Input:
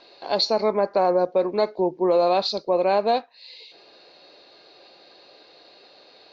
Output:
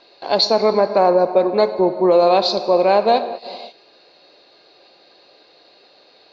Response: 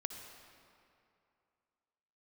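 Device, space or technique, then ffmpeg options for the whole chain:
keyed gated reverb: -filter_complex "[0:a]asplit=3[a][b][c];[1:a]atrim=start_sample=2205[d];[b][d]afir=irnorm=-1:irlink=0[e];[c]apad=whole_len=278926[f];[e][f]sidechaingate=range=-33dB:threshold=-44dB:ratio=16:detection=peak,volume=1.5dB[g];[a][g]amix=inputs=2:normalize=0"

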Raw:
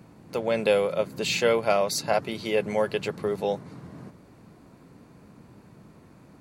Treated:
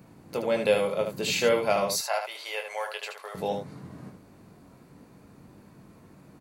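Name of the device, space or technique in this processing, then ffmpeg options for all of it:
slapback doubling: -filter_complex "[0:a]asettb=1/sr,asplit=3[a][b][c];[a]atrim=end=1.934[d];[b]atrim=start=1.93:end=3.35,asetpts=PTS-STARTPTS,afade=t=in:d=0.004:c=qsin,afade=t=out:st=1.416:d=0.004:c=qsin,highpass=f=670:w=0.5412,highpass=f=670:w=1.3066[e];[c]atrim=start=3.346[f];[d][e]acrossfade=d=0.004:c1=hsin:c2=qsin[g];[g][f]acrossfade=d=0.004:c1=qsin:c2=hsin,highshelf=f=12k:g=8.5,asplit=3[h][i][j];[i]adelay=21,volume=-7dB[k];[j]adelay=76,volume=-6.5dB[l];[h][k][l]amix=inputs=3:normalize=0,volume=-2.5dB"

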